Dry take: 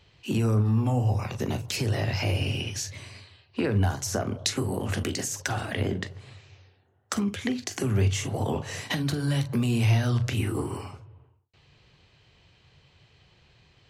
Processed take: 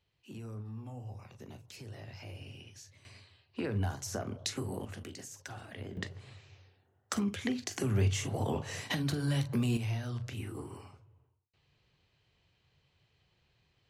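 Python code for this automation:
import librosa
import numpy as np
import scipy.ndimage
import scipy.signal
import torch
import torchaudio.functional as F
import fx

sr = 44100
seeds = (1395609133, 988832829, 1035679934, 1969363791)

y = fx.gain(x, sr, db=fx.steps((0.0, -20.0), (3.05, -9.0), (4.85, -16.0), (5.97, -5.0), (9.77, -13.0)))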